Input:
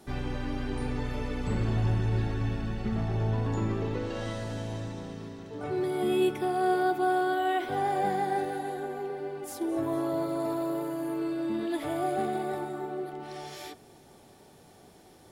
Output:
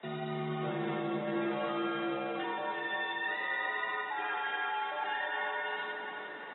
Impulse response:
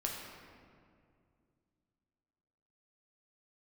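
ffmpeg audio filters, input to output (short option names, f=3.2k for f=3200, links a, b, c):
-filter_complex "[0:a]equalizer=f=380:w=6.1:g=-8,acrossover=split=280|7100[a][b][c];[a]asoftclip=type=tanh:threshold=-29dB[d];[b]aemphasis=mode=production:type=cd[e];[c]aeval=exprs='(mod(200*val(0)+1,2)-1)/200':c=same[f];[d][e][f]amix=inputs=3:normalize=0,asetrate=103194,aresample=44100,highpass=f=55:w=0.5412,highpass=f=55:w=1.3066[g];[1:a]atrim=start_sample=2205,afade=t=out:st=0.35:d=0.01,atrim=end_sample=15876,asetrate=48510,aresample=44100[h];[g][h]afir=irnorm=-1:irlink=0,areverse,acompressor=threshold=-38dB:ratio=12,areverse,afreqshift=82,aecho=1:1:351|702|1053|1404|1755|2106|2457|2808:0.447|0.264|0.155|0.0917|0.0541|0.0319|0.0188|0.0111,volume=5dB" -ar 22050 -c:a aac -b:a 16k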